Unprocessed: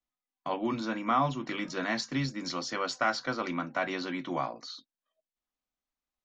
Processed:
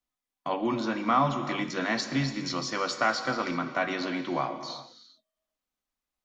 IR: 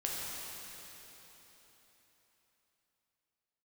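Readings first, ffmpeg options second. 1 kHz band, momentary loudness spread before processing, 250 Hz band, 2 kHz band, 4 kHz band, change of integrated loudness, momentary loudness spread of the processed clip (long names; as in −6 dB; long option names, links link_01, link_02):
+3.0 dB, 9 LU, +3.0 dB, +3.0 dB, +3.0 dB, +3.0 dB, 9 LU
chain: -filter_complex "[0:a]asplit=2[link_01][link_02];[1:a]atrim=start_sample=2205,afade=type=out:start_time=0.32:duration=0.01,atrim=end_sample=14553,asetrate=29988,aresample=44100[link_03];[link_02][link_03]afir=irnorm=-1:irlink=0,volume=-10dB[link_04];[link_01][link_04]amix=inputs=2:normalize=0"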